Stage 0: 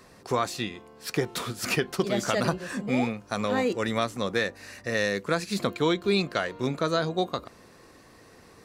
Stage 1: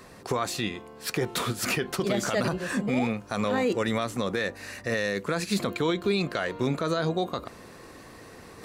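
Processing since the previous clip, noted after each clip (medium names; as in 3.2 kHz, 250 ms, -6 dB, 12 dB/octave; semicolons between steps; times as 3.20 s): peaking EQ 5.3 kHz -3 dB 0.59 oct; reverse; upward compressor, threshold -46 dBFS; reverse; peak limiter -21 dBFS, peak gain reduction 11 dB; trim +4.5 dB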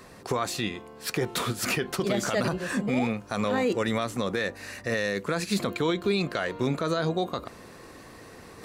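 no audible change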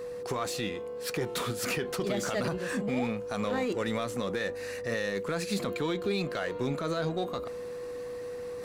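in parallel at -4 dB: hard clipper -33 dBFS, distortion -4 dB; on the sum: whistle 490 Hz -29 dBFS; trim -6.5 dB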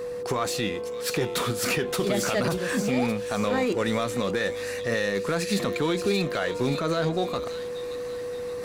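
feedback echo behind a high-pass 578 ms, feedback 44%, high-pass 2.7 kHz, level -6 dB; trim +5.5 dB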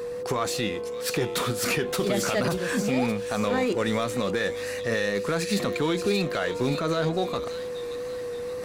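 wow and flutter 29 cents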